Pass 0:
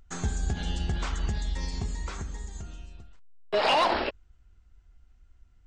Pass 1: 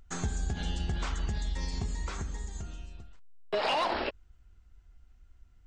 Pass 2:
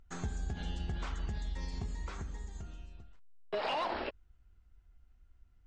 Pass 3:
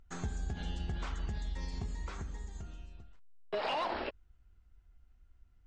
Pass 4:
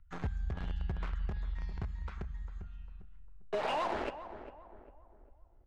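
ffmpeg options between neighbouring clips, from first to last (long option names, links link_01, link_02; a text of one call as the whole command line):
ffmpeg -i in.wav -af "acompressor=threshold=-29dB:ratio=2.5" out.wav
ffmpeg -i in.wav -af "highshelf=frequency=5500:gain=-9.5,volume=-5dB" out.wav
ffmpeg -i in.wav -af anull out.wav
ffmpeg -i in.wav -filter_complex "[0:a]acrossover=split=160|1100[link_01][link_02][link_03];[link_02]acrusher=bits=6:mix=0:aa=0.000001[link_04];[link_01][link_04][link_03]amix=inputs=3:normalize=0,adynamicsmooth=sensitivity=3.5:basefreq=2000,asplit=2[link_05][link_06];[link_06]adelay=400,lowpass=frequency=1300:poles=1,volume=-11dB,asplit=2[link_07][link_08];[link_08]adelay=400,lowpass=frequency=1300:poles=1,volume=0.42,asplit=2[link_09][link_10];[link_10]adelay=400,lowpass=frequency=1300:poles=1,volume=0.42,asplit=2[link_11][link_12];[link_12]adelay=400,lowpass=frequency=1300:poles=1,volume=0.42[link_13];[link_05][link_07][link_09][link_11][link_13]amix=inputs=5:normalize=0,volume=1.5dB" out.wav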